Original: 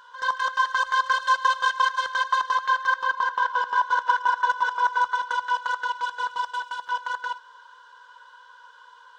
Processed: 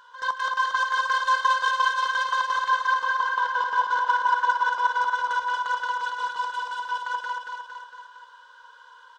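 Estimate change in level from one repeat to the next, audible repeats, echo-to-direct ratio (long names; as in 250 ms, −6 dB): −4.5 dB, 4, −2.5 dB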